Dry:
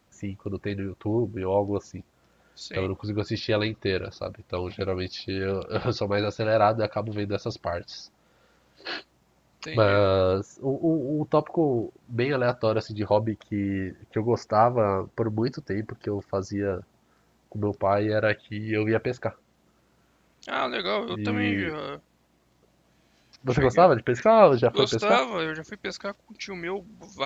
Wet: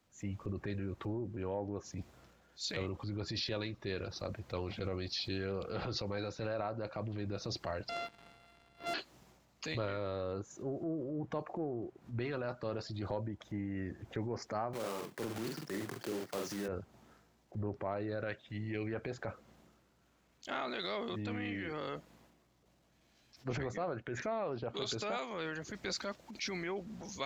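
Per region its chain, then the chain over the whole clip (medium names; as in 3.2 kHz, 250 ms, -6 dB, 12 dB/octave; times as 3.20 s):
7.89–8.94 s: sorted samples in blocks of 64 samples + low-pass 4.2 kHz 24 dB/octave + waveshaping leveller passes 2
14.73–16.68 s: block-companded coder 3-bit + high-pass 130 Hz 24 dB/octave + doubling 45 ms -5.5 dB
whole clip: transient shaper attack -8 dB, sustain +5 dB; compression 12:1, threshold -38 dBFS; three bands expanded up and down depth 40%; trim +2.5 dB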